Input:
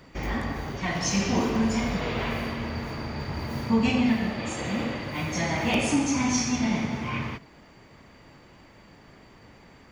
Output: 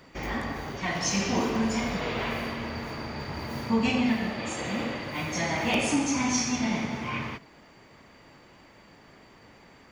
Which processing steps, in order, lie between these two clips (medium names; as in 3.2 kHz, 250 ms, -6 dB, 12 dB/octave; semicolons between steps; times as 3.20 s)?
bass shelf 180 Hz -7 dB